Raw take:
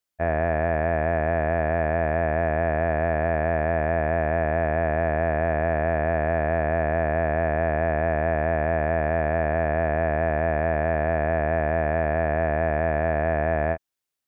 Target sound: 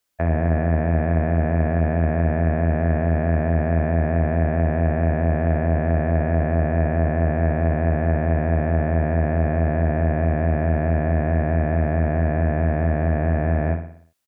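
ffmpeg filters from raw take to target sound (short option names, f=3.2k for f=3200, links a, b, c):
-filter_complex "[0:a]acrossover=split=310[a][b];[b]acompressor=threshold=-34dB:ratio=10[c];[a][c]amix=inputs=2:normalize=0,asplit=2[d][e];[e]aecho=0:1:60|120|180|240|300|360:0.376|0.192|0.0978|0.0499|0.0254|0.013[f];[d][f]amix=inputs=2:normalize=0,volume=8dB"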